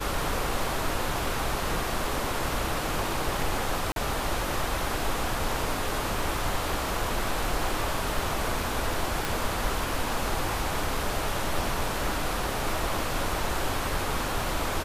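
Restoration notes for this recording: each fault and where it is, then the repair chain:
0:03.92–0:03.96: drop-out 42 ms
0:09.25: click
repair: click removal
repair the gap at 0:03.92, 42 ms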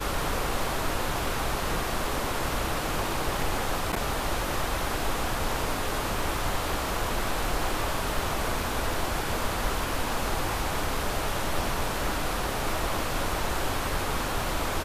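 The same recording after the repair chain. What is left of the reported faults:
none of them is left

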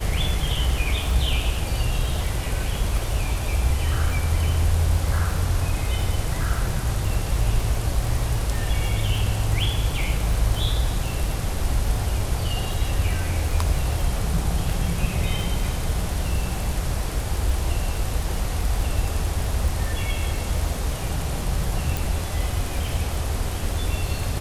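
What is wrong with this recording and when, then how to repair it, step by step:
surface crackle 41 per second −28 dBFS
0:21.97: click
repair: click removal

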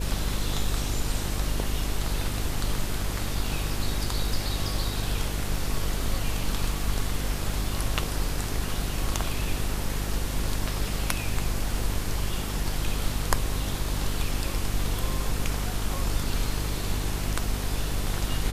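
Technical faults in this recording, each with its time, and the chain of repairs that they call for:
mains buzz 50 Hz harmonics 9 −31 dBFS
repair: hum removal 50 Hz, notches 9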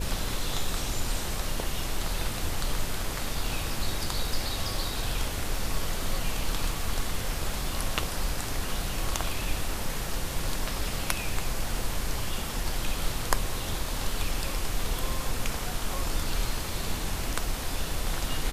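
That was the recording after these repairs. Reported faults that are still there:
none of them is left

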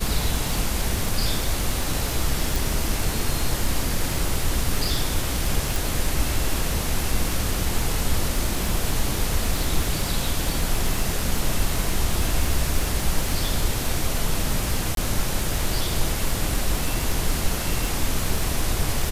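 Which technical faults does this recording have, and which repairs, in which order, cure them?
surface crackle 56 per second −25 dBFS
0:02.56: click
0:05.76: click
0:14.95–0:14.97: drop-out 22 ms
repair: click removal
repair the gap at 0:14.95, 22 ms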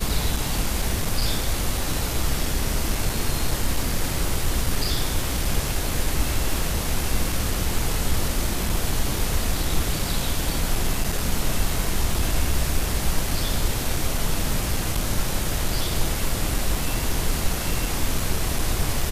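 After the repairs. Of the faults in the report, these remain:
none of them is left

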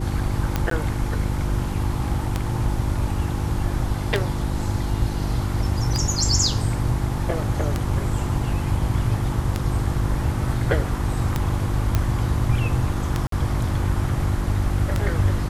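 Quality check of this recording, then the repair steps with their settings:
mains hum 50 Hz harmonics 7 −27 dBFS
scratch tick 33 1/3 rpm −8 dBFS
0:00.70–0:00.71: drop-out 13 ms
0:11.95: click −7 dBFS
0:13.27–0:13.32: drop-out 53 ms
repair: click removal
hum removal 50 Hz, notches 7
repair the gap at 0:00.70, 13 ms
repair the gap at 0:13.27, 53 ms

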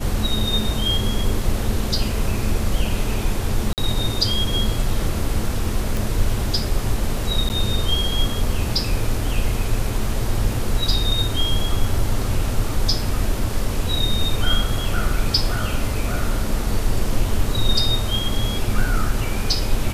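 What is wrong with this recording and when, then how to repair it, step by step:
0:03.73–0:03.78: drop-out 48 ms
0:05.97: click
0:07.49–0:07.50: drop-out 9.2 ms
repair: click removal
repair the gap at 0:03.73, 48 ms
repair the gap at 0:07.49, 9.2 ms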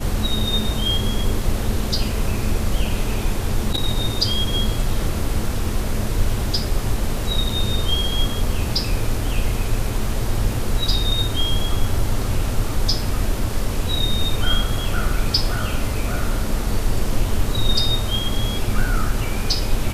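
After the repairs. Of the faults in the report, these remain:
none of them is left

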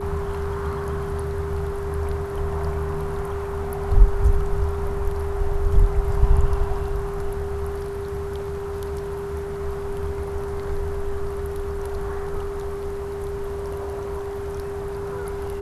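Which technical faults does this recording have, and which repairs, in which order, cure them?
whistle 400 Hz −28 dBFS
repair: notch filter 400 Hz, Q 30

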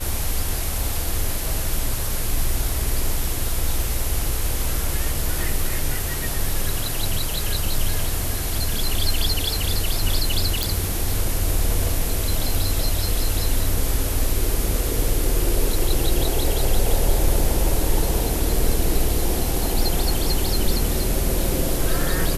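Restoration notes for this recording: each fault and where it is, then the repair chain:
0:10.63: click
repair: click removal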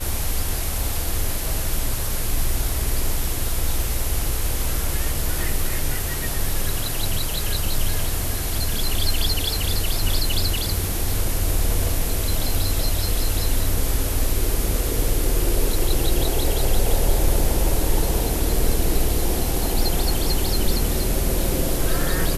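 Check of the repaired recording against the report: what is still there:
none of them is left

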